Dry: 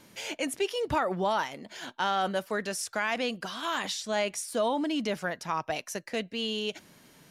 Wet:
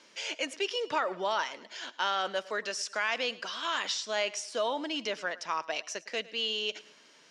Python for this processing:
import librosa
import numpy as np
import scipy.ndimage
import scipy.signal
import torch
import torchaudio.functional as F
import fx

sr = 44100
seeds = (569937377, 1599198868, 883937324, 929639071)

y = fx.cabinet(x, sr, low_hz=460.0, low_slope=12, high_hz=7100.0, hz=(770.0, 2900.0, 5300.0), db=(-6, 3, 4))
y = fx.echo_feedback(y, sr, ms=108, feedback_pct=38, wet_db=-19.5)